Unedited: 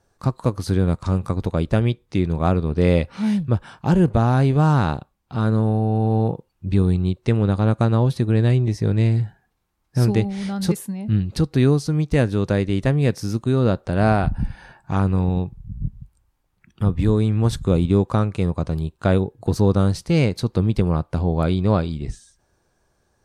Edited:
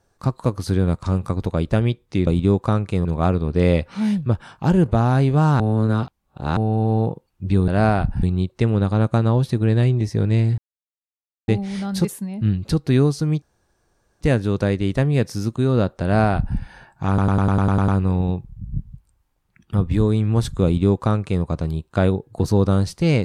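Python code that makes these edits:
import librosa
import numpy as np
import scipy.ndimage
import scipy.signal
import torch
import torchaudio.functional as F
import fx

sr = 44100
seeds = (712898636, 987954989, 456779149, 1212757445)

y = fx.edit(x, sr, fx.reverse_span(start_s=4.82, length_s=0.97),
    fx.silence(start_s=9.25, length_s=0.9),
    fx.insert_room_tone(at_s=12.09, length_s=0.79),
    fx.duplicate(start_s=13.91, length_s=0.55, to_s=6.9),
    fx.stutter(start_s=14.96, slice_s=0.1, count=9),
    fx.duplicate(start_s=17.73, length_s=0.78, to_s=2.27), tone=tone)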